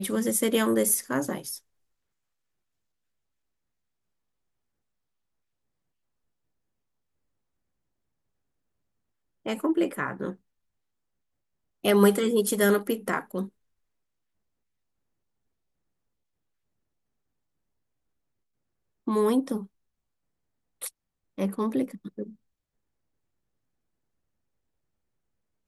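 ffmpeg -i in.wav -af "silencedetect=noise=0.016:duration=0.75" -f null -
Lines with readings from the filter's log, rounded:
silence_start: 1.57
silence_end: 9.46 | silence_duration: 7.89
silence_start: 10.33
silence_end: 11.85 | silence_duration: 1.52
silence_start: 13.46
silence_end: 19.07 | silence_duration: 5.61
silence_start: 19.64
silence_end: 20.82 | silence_duration: 1.18
silence_start: 22.29
silence_end: 25.68 | silence_duration: 3.38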